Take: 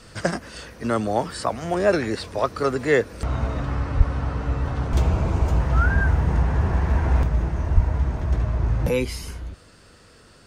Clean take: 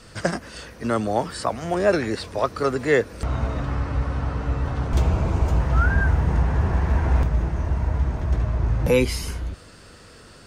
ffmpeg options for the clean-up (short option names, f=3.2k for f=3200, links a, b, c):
-filter_complex "[0:a]asplit=3[a][b][c];[a]afade=t=out:st=3.97:d=0.02[d];[b]highpass=f=140:w=0.5412,highpass=f=140:w=1.3066,afade=t=in:st=3.97:d=0.02,afade=t=out:st=4.09:d=0.02[e];[c]afade=t=in:st=4.09:d=0.02[f];[d][e][f]amix=inputs=3:normalize=0,asplit=3[g][h][i];[g]afade=t=out:st=7.74:d=0.02[j];[h]highpass=f=140:w=0.5412,highpass=f=140:w=1.3066,afade=t=in:st=7.74:d=0.02,afade=t=out:st=7.86:d=0.02[k];[i]afade=t=in:st=7.86:d=0.02[l];[j][k][l]amix=inputs=3:normalize=0,asetnsamples=n=441:p=0,asendcmd='8.89 volume volume 4.5dB',volume=0dB"